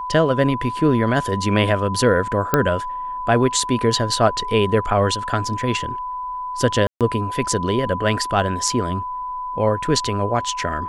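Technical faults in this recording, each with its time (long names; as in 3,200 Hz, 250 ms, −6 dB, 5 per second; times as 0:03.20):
whistle 1,000 Hz −25 dBFS
0:02.54: click −2 dBFS
0:06.87–0:07.01: drop-out 137 ms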